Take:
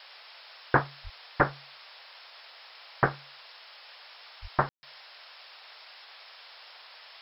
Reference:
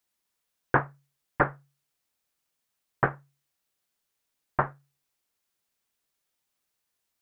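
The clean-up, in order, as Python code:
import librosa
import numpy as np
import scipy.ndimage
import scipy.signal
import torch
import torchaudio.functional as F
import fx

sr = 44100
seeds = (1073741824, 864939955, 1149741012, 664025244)

y = fx.fix_deplosive(x, sr, at_s=(1.03, 4.41))
y = fx.fix_ambience(y, sr, seeds[0], print_start_s=2.25, print_end_s=2.75, start_s=4.69, end_s=4.83)
y = fx.noise_reduce(y, sr, print_start_s=2.25, print_end_s=2.75, reduce_db=30.0)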